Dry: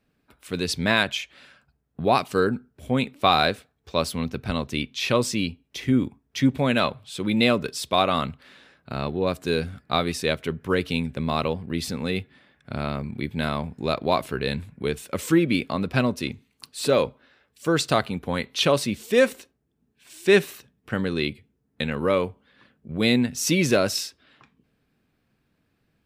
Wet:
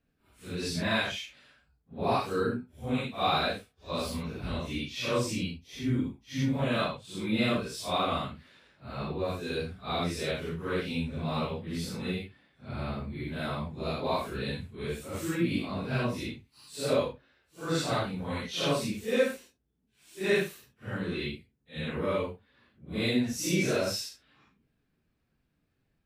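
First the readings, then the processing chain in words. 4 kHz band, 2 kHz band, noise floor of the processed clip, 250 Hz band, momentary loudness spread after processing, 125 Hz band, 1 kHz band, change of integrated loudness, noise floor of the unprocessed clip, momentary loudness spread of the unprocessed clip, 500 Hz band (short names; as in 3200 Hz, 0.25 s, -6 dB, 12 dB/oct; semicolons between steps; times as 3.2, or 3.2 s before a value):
-7.5 dB, -7.5 dB, -76 dBFS, -7.0 dB, 11 LU, -5.0 dB, -7.5 dB, -7.5 dB, -72 dBFS, 11 LU, -7.5 dB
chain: phase scrambler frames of 0.2 s; low shelf 75 Hz +9 dB; gain -7.5 dB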